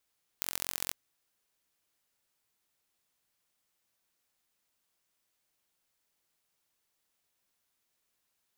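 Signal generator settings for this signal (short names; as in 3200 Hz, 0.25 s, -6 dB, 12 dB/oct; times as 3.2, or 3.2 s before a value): pulse train 44.4/s, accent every 3, -4 dBFS 0.51 s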